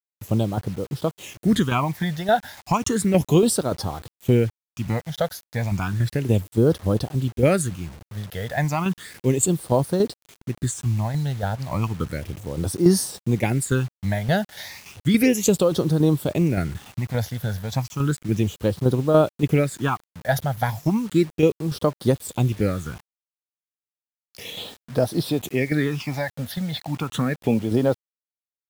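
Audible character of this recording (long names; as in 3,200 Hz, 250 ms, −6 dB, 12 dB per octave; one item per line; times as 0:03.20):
tremolo saw down 3.5 Hz, depth 55%
phaser sweep stages 8, 0.33 Hz, lowest notch 320–2,400 Hz
a quantiser's noise floor 8 bits, dither none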